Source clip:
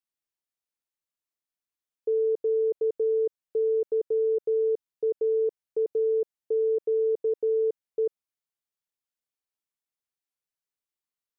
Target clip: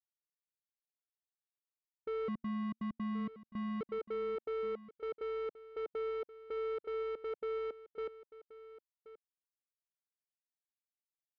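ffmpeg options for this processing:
-filter_complex "[0:a]afwtdn=0.0282,asoftclip=type=tanh:threshold=-31dB,asettb=1/sr,asplit=3[a][b][c];[a]atrim=end=2.284[d];[b]atrim=start=2.28:end=3.81,asetpts=PTS-STARTPTS,afade=t=in:d=0.004:c=qsin,afade=t=out:st=1.526:d=0.004:c=qsin,afreqshift=-230[e];[c]atrim=start=3.806[f];[d][e]acrossfade=d=0.004:c1=hsin:c2=qsin[g];[g][f]acrossfade=d=0.004:c1=qsin:c2=hsin,aecho=1:1:1078:0.15,volume=-4.5dB"

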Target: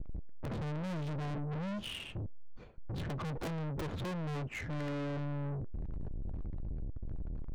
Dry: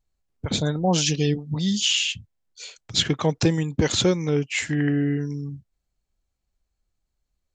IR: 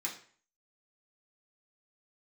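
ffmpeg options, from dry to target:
-filter_complex "[0:a]aeval=exprs='val(0)+0.5*0.0316*sgn(val(0))':c=same,aemphasis=mode=reproduction:type=riaa,agate=range=-33dB:threshold=-26dB:ratio=3:detection=peak,equalizer=f=3.6k:t=o:w=2:g=-6,aeval=exprs='(mod(1.58*val(0)+1,2)-1)/1.58':c=same,adynamicsmooth=sensitivity=3:basefreq=1.1k,aeval=exprs='(tanh(35.5*val(0)+0.2)-tanh(0.2))/35.5':c=same,asplit=2[a][b];[1:a]atrim=start_sample=2205,asetrate=88200,aresample=44100,lowpass=3.7k[c];[b][c]afir=irnorm=-1:irlink=0,volume=-10dB[d];[a][d]amix=inputs=2:normalize=0,volume=-5dB"

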